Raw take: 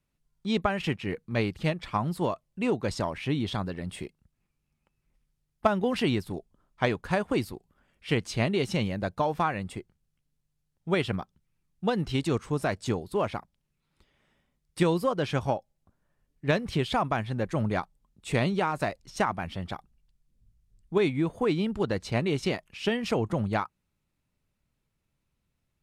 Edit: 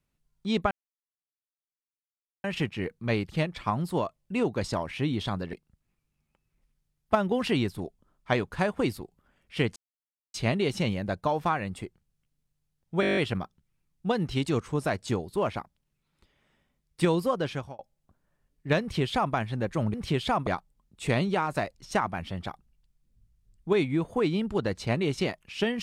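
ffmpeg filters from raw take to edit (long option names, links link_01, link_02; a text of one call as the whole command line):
ffmpeg -i in.wav -filter_complex "[0:a]asplit=15[link_01][link_02][link_03][link_04][link_05][link_06][link_07][link_08][link_09][link_10][link_11][link_12][link_13][link_14][link_15];[link_01]atrim=end=0.71,asetpts=PTS-STARTPTS,afade=type=out:start_time=0.706:duration=0.004:curve=hsin,apad=pad_dur=1.73[link_16];[link_02]atrim=start=0.71:end=3.802,asetpts=PTS-STARTPTS,afade=type=in:duration=0.004:curve=hsin[link_17];[link_03]atrim=start=4.048:end=8.28,asetpts=PTS-STARTPTS,afade=type=out:start_time=4.228:duration=0.004:curve=hsin,apad=pad_dur=0.58[link_18];[link_04]atrim=start=8.28:end=10.972,asetpts=PTS-STARTPTS,afade=type=in:duration=0.004:curve=hsin[link_19];[link_05]atrim=start=10.948:end=10.972[link_20];[link_06]atrim=start=10.948:end=10.972[link_21];[link_07]atrim=start=10.948:end=10.972[link_22];[link_08]atrim=start=10.948:end=10.972[link_23];[link_09]atrim=start=10.948:end=10.972[link_24];[link_10]atrim=start=10.948:end=10.972[link_25];[link_11]atrim=start=10.948:end=10.972[link_26];[link_12]atrim=start=10.948:end=15.57,asetpts=PTS-STARTPTS,afade=type=out:start_time=4.212:duration=0.41[link_27];[link_13]atrim=start=15.57:end=17.722,asetpts=PTS-STARTPTS,afade=type=in:duration=0.004:curve=hsin[link_28];[link_14]atrim=start=16.588:end=17.122[link_29];[link_15]atrim=start=17.718[link_30];[link_16][link_17]concat=n=2:v=0:a=1[link_31];[link_18][link_19]concat=n=2:v=0:a=1[link_32];[link_31][link_32]acrossfade=duration=0.004:curve1=hsin:curve2=hsin[link_33];[link_33][link_20]acrossfade=duration=0.004:curve1=hsin:curve2=hsin[link_34];[link_34][link_21]acrossfade=duration=0.004:curve1=hsin:curve2=hsin[link_35];[link_35][link_22]acrossfade=duration=0.004:curve1=hsin:curve2=hsin[link_36];[link_36][link_23]acrossfade=duration=0.004:curve1=hsin:curve2=hsin[link_37];[link_37][link_24]acrossfade=duration=0.004:curve1=hsin:curve2=hsin[link_38];[link_38][link_25]acrossfade=duration=0.004:curve1=hsin:curve2=hsin[link_39];[link_39][link_26]acrossfade=duration=0.004:curve1=hsin:curve2=hsin[link_40];[link_27][link_28]concat=n=2:v=0:a=1[link_41];[link_40][link_41]acrossfade=duration=0.004:curve1=hsin:curve2=hsin[link_42];[link_42][link_29]acrossfade=duration=0.004:curve1=hsin:curve2=hsin[link_43];[link_43][link_30]acrossfade=duration=0.004:curve1=hsin:curve2=hsin" out.wav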